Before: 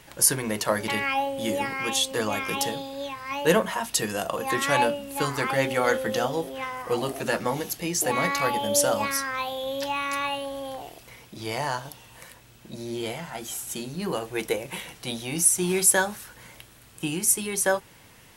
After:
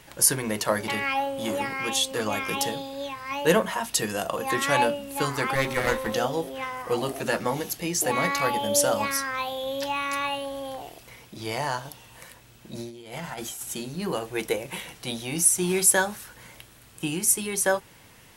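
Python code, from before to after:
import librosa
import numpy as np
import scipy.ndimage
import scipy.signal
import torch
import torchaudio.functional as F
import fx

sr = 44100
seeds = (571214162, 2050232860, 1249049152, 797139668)

y = fx.transformer_sat(x, sr, knee_hz=860.0, at=(0.81, 2.26))
y = fx.lower_of_two(y, sr, delay_ms=0.51, at=(5.55, 6.14))
y = fx.over_compress(y, sr, threshold_db=-36.0, ratio=-0.5, at=(12.75, 13.63))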